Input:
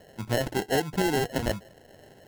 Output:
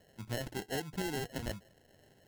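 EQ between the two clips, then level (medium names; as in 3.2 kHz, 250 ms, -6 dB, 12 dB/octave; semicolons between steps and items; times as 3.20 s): peaking EQ 640 Hz -5 dB 2.5 oct; -8.5 dB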